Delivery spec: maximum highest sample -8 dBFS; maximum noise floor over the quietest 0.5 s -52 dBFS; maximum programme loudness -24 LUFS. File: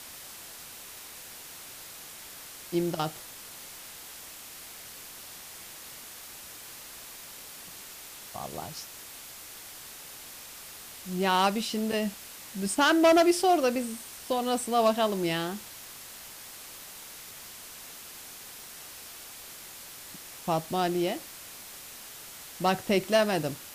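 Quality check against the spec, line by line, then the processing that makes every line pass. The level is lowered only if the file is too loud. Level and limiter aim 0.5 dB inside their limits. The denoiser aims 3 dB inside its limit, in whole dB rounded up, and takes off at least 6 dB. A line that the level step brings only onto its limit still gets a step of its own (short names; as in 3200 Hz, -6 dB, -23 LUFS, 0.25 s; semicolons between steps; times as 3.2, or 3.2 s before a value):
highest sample -10.5 dBFS: OK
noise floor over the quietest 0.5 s -45 dBFS: fail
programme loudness -27.5 LUFS: OK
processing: denoiser 10 dB, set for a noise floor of -45 dBFS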